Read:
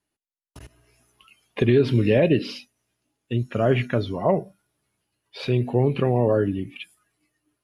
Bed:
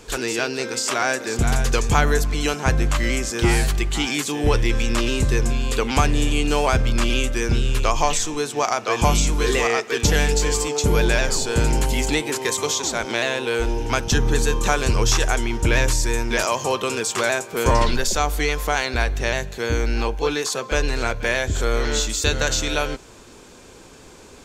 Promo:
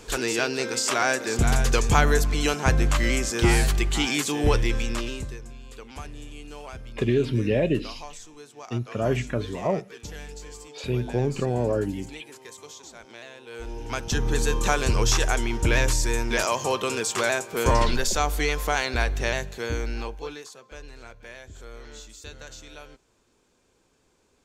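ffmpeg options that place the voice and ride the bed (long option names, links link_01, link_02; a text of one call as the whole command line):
ffmpeg -i stem1.wav -i stem2.wav -filter_complex "[0:a]adelay=5400,volume=-4.5dB[link_01];[1:a]volume=16.5dB,afade=type=out:start_time=4.4:duration=0.99:silence=0.105925,afade=type=in:start_time=13.45:duration=1.12:silence=0.125893,afade=type=out:start_time=19.23:duration=1.31:silence=0.11885[link_02];[link_01][link_02]amix=inputs=2:normalize=0" out.wav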